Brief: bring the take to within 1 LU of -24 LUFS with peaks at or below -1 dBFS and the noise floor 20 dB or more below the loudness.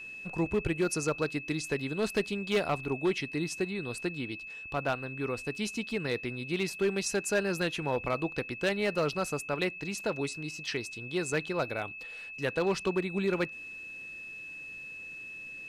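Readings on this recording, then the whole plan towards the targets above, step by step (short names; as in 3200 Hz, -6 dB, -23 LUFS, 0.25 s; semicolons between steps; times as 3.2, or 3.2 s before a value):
clipped 0.7%; flat tops at -21.5 dBFS; steady tone 2600 Hz; tone level -41 dBFS; loudness -32.5 LUFS; peak -21.5 dBFS; loudness target -24.0 LUFS
-> clip repair -21.5 dBFS; notch 2600 Hz, Q 30; gain +8.5 dB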